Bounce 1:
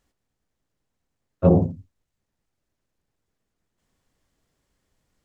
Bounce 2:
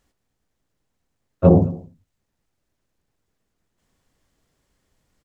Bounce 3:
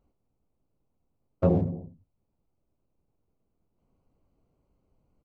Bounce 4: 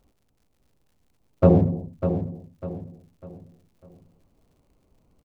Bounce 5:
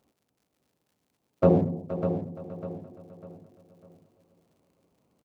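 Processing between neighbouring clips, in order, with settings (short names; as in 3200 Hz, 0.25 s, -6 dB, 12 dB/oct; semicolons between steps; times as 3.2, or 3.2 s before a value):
echo 0.218 s -23.5 dB; gain +3.5 dB
Wiener smoothing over 25 samples; compressor 2.5:1, threshold -24 dBFS, peak gain reduction 11 dB
crackle 110/s -63 dBFS; on a send: feedback echo 0.599 s, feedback 36%, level -9 dB; on the sum: gain +7 dB
Bessel high-pass 180 Hz, order 2; feedback echo 0.471 s, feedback 37%, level -13.5 dB; gain -2 dB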